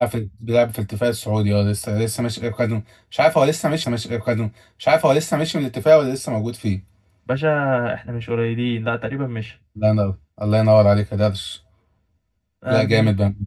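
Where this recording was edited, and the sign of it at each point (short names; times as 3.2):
3.84 repeat of the last 1.68 s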